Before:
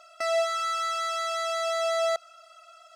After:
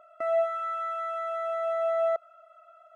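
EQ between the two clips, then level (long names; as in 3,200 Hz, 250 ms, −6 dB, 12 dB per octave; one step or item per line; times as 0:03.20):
Savitzky-Golay smoothing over 65 samples
parametric band 800 Hz −12 dB 0.31 octaves
+4.0 dB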